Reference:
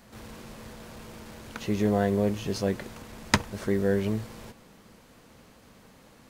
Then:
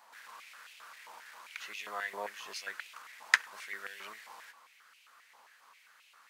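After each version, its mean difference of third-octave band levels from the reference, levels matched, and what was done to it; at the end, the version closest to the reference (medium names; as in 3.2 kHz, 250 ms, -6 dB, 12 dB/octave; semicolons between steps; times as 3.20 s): 12.0 dB: step-sequenced high-pass 7.5 Hz 920–2600 Hz; trim -6.5 dB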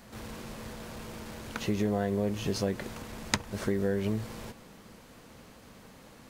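4.5 dB: compression 4:1, threshold -28 dBFS, peak gain reduction 11 dB; trim +2 dB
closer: second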